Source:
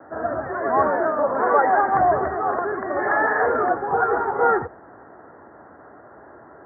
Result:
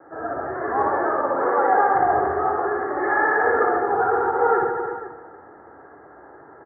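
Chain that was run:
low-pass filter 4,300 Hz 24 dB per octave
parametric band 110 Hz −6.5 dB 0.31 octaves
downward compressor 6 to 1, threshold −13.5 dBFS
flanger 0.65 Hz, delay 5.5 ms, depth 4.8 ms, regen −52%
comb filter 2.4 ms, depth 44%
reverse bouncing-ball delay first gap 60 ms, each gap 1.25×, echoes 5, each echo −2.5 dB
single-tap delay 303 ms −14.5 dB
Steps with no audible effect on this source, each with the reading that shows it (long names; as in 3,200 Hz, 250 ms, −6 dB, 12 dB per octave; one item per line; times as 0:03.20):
low-pass filter 4,300 Hz: nothing at its input above 2,000 Hz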